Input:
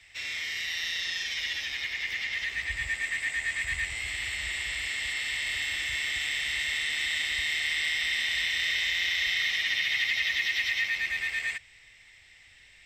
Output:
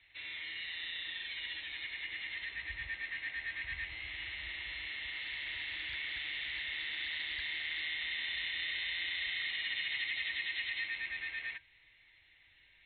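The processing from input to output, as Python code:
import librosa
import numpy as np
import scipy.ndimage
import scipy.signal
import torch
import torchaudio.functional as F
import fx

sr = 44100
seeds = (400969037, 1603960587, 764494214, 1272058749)

y = fx.brickwall_lowpass(x, sr, high_hz=4200.0)
y = fx.comb_fb(y, sr, f0_hz=320.0, decay_s=0.15, harmonics='odd', damping=0.0, mix_pct=70)
y = fx.doppler_dist(y, sr, depth_ms=0.3, at=(5.12, 7.8))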